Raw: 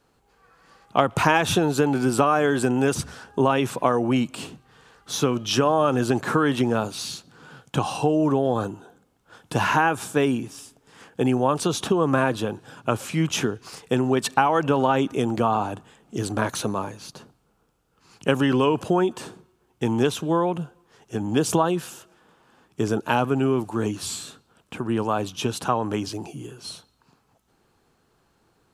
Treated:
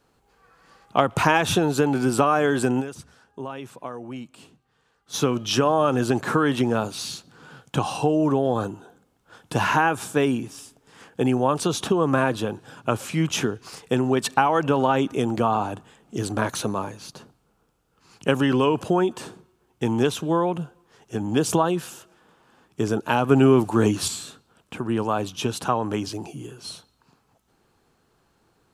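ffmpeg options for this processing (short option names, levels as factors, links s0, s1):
-filter_complex "[0:a]asplit=5[s0][s1][s2][s3][s4];[s0]atrim=end=2.97,asetpts=PTS-STARTPTS,afade=t=out:st=2.8:d=0.17:c=exp:silence=0.199526[s5];[s1]atrim=start=2.97:end=4.98,asetpts=PTS-STARTPTS,volume=0.2[s6];[s2]atrim=start=4.98:end=23.292,asetpts=PTS-STARTPTS,afade=t=in:d=0.17:c=exp:silence=0.199526[s7];[s3]atrim=start=23.288:end=24.082,asetpts=PTS-STARTPTS,volume=2[s8];[s4]atrim=start=24.078[s9];[s5][s6][s7]concat=n=3:v=0:a=1[s10];[s10][s8]acrossfade=d=0.004:c1=hsin:c2=hsin[s11];[s11][s9]acrossfade=d=0.004:c1=hsin:c2=hsin"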